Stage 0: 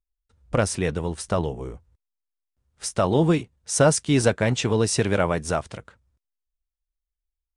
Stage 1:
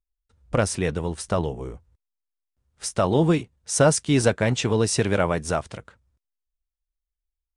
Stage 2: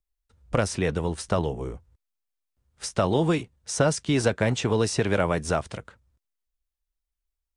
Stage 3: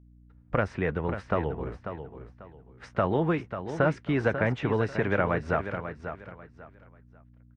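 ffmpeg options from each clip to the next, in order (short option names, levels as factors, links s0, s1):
-af anull
-filter_complex "[0:a]acrossover=split=470|1600|6900[s0][s1][s2][s3];[s0]acompressor=threshold=0.0708:ratio=4[s4];[s1]acompressor=threshold=0.0562:ratio=4[s5];[s2]acompressor=threshold=0.0251:ratio=4[s6];[s3]acompressor=threshold=0.00708:ratio=4[s7];[s4][s5][s6][s7]amix=inputs=4:normalize=0,volume=1.12"
-filter_complex "[0:a]lowpass=f=1800:t=q:w=1.6,aeval=exprs='val(0)+0.00316*(sin(2*PI*60*n/s)+sin(2*PI*2*60*n/s)/2+sin(2*PI*3*60*n/s)/3+sin(2*PI*4*60*n/s)/4+sin(2*PI*5*60*n/s)/5)':c=same,asplit=2[s0][s1];[s1]aecho=0:1:542|1084|1626:0.335|0.0871|0.0226[s2];[s0][s2]amix=inputs=2:normalize=0,volume=0.668"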